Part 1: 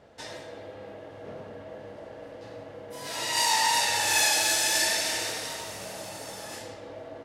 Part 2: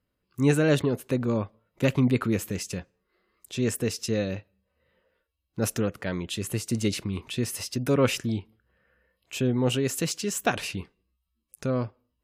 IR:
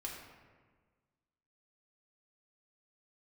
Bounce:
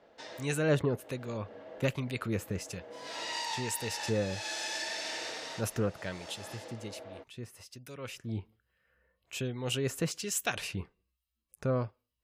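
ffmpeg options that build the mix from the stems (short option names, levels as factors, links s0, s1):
-filter_complex "[0:a]acrossover=split=190 6700:gain=0.178 1 0.1[s0][s1][s2];[s0][s1][s2]amix=inputs=3:normalize=0,acompressor=threshold=0.0398:ratio=6,volume=0.562[s3];[1:a]equalizer=f=260:t=o:w=1.1:g=-5.5,acrossover=split=1900[s4][s5];[s4]aeval=exprs='val(0)*(1-0.7/2+0.7/2*cos(2*PI*1.2*n/s))':c=same[s6];[s5]aeval=exprs='val(0)*(1-0.7/2-0.7/2*cos(2*PI*1.2*n/s))':c=same[s7];[s6][s7]amix=inputs=2:normalize=0,volume=2.99,afade=t=out:st=6.13:d=0.35:silence=0.316228,afade=t=in:st=8.23:d=0.21:silence=0.281838,asplit=2[s8][s9];[s9]apad=whole_len=319291[s10];[s3][s10]sidechaincompress=threshold=0.0141:ratio=8:attack=16:release=300[s11];[s11][s8]amix=inputs=2:normalize=0"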